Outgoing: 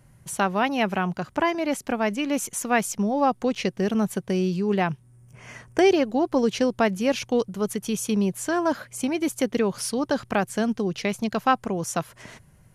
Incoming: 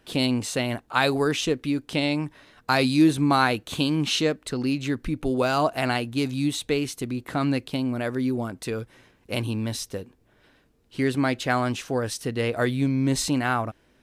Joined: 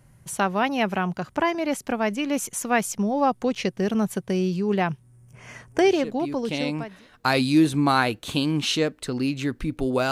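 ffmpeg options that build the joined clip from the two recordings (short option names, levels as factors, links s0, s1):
-filter_complex "[0:a]apad=whole_dur=10.11,atrim=end=10.11,atrim=end=7.08,asetpts=PTS-STARTPTS[s0];[1:a]atrim=start=1.16:end=5.55,asetpts=PTS-STARTPTS[s1];[s0][s1]acrossfade=d=1.36:c1=tri:c2=tri"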